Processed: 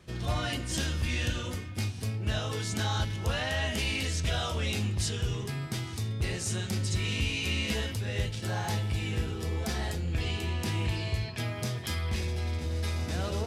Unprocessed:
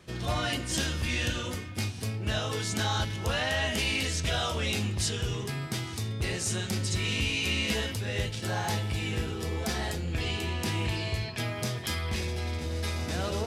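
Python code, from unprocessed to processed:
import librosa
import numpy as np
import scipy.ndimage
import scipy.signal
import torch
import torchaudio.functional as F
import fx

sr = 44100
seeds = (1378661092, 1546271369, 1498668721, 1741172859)

y = fx.low_shelf(x, sr, hz=130.0, db=6.5)
y = F.gain(torch.from_numpy(y), -3.0).numpy()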